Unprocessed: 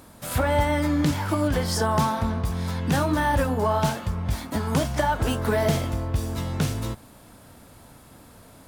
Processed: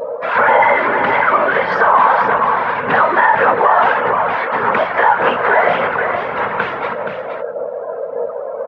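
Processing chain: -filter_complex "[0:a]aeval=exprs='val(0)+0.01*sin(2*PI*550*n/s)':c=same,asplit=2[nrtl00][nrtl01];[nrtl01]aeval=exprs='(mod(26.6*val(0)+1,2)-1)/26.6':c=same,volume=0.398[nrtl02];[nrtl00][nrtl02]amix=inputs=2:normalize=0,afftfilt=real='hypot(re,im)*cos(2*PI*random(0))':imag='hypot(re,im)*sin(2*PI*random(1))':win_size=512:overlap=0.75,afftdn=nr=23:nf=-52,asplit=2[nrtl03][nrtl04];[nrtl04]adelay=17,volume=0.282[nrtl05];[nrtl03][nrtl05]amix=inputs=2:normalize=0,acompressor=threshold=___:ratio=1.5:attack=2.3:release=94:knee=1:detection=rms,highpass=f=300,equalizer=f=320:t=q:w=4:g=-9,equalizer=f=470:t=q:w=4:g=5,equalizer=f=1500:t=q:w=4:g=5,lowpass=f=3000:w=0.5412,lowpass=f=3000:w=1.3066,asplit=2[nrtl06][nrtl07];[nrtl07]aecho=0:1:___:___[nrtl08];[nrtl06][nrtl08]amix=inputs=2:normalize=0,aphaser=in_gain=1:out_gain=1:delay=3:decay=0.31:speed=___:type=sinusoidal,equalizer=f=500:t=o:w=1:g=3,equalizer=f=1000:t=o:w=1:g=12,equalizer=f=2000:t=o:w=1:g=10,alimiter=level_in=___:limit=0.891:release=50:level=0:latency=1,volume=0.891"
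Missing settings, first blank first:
0.0141, 473, 0.422, 1.7, 5.01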